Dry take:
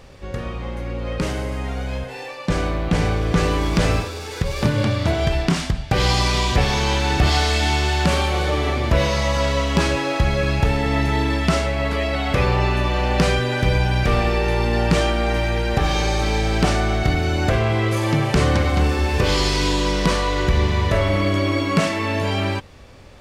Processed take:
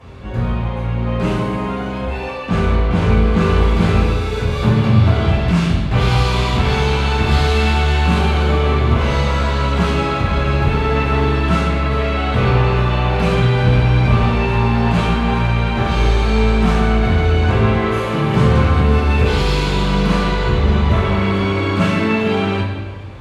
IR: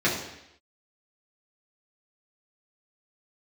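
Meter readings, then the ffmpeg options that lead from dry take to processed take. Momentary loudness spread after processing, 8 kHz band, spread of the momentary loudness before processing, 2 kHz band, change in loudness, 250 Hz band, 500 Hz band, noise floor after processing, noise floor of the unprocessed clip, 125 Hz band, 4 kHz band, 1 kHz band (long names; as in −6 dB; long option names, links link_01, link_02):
6 LU, −6.0 dB, 7 LU, +2.0 dB, +4.0 dB, +5.0 dB, +2.5 dB, −23 dBFS, −33 dBFS, +6.0 dB, −0.5 dB, +3.5 dB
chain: -filter_complex "[0:a]asoftclip=type=tanh:threshold=-20dB[link_01];[1:a]atrim=start_sample=2205,asetrate=26901,aresample=44100[link_02];[link_01][link_02]afir=irnorm=-1:irlink=0,volume=-11dB"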